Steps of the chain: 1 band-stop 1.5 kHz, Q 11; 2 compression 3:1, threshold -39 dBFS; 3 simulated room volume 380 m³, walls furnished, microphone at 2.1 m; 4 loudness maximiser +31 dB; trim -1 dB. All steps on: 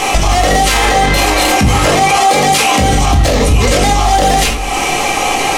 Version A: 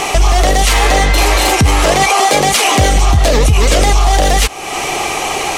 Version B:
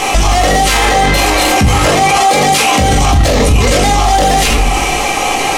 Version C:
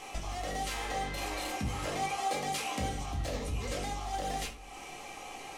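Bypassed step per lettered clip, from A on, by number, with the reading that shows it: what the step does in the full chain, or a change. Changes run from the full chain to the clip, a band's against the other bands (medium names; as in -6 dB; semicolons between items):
3, 250 Hz band -3.0 dB; 2, mean gain reduction 11.0 dB; 4, crest factor change +5.5 dB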